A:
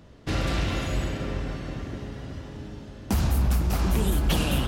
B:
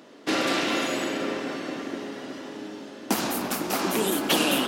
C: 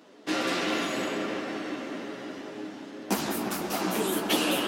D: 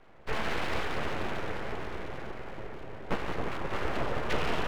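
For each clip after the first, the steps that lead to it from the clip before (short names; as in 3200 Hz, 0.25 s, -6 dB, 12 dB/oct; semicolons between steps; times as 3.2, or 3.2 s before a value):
Chebyshev high-pass 270 Hz, order 3; gain +6.5 dB
chorus voices 4, 1.2 Hz, delay 13 ms, depth 3.8 ms; dark delay 0.175 s, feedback 78%, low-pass 2300 Hz, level -8.5 dB; gain -1 dB
mistuned SSB -92 Hz 150–2500 Hz; echo with dull and thin repeats by turns 0.266 s, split 960 Hz, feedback 51%, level -6 dB; full-wave rectifier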